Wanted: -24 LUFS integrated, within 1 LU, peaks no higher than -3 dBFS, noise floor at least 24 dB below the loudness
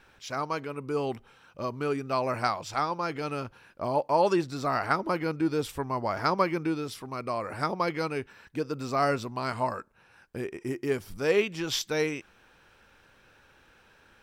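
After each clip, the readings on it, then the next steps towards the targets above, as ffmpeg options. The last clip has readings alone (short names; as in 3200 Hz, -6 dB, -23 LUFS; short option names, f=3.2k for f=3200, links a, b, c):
loudness -30.0 LUFS; peak -10.0 dBFS; loudness target -24.0 LUFS
-> -af "volume=6dB"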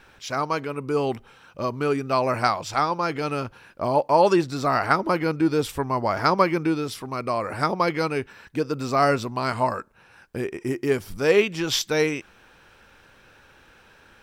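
loudness -24.0 LUFS; peak -4.0 dBFS; noise floor -55 dBFS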